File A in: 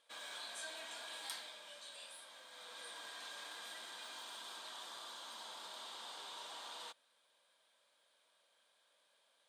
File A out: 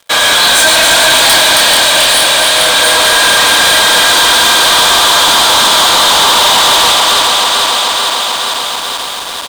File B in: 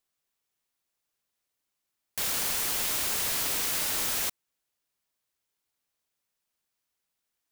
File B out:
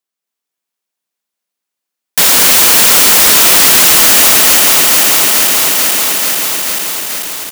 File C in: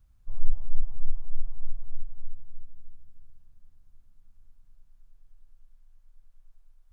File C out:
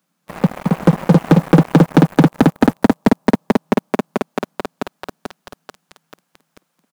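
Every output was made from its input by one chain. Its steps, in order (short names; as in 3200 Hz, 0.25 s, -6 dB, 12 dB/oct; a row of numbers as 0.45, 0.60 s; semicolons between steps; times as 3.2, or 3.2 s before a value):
regenerating reverse delay 0.219 s, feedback 85%, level -6 dB; steep high-pass 160 Hz 72 dB/oct; on a send: echo 0.271 s -4.5 dB; on the sum: sample leveller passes 5; normalise peaks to -3 dBFS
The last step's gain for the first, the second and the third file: +25.5, +9.5, +19.0 dB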